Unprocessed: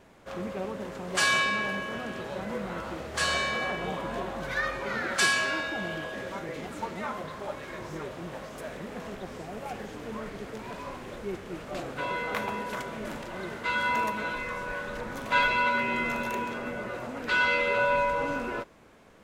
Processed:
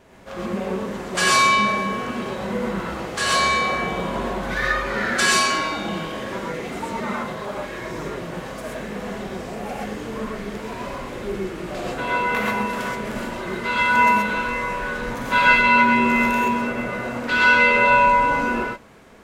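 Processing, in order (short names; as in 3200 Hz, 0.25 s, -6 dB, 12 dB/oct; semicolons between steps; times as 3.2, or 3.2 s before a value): non-linear reverb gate 0.15 s rising, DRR -3.5 dB; gain +3 dB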